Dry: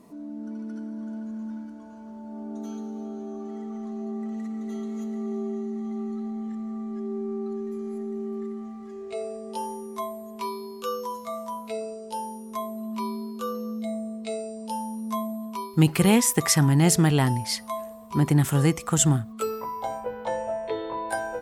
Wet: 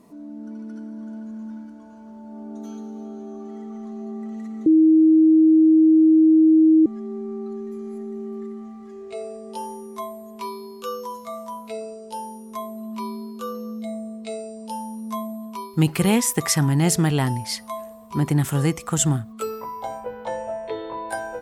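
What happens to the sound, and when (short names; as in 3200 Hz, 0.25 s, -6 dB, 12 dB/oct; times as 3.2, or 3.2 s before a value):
4.66–6.86 bleep 317 Hz -10.5 dBFS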